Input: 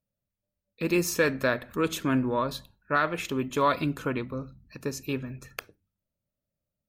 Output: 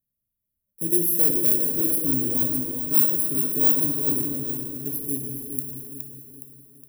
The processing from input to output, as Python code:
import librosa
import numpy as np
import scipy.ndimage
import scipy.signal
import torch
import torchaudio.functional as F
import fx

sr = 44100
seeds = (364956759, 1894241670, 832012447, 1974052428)

p1 = fx.bit_reversed(x, sr, seeds[0], block=16)
p2 = fx.curve_eq(p1, sr, hz=(340.0, 700.0, 1400.0, 3400.0, 7300.0, 11000.0), db=(0, -14, -19, -15, -9, 13))
p3 = p2 + fx.echo_feedback(p2, sr, ms=416, feedback_pct=46, wet_db=-7.5, dry=0)
p4 = fx.rev_plate(p3, sr, seeds[1], rt60_s=2.8, hf_ratio=0.75, predelay_ms=0, drr_db=1.5)
y = p4 * 10.0 ** (-3.0 / 20.0)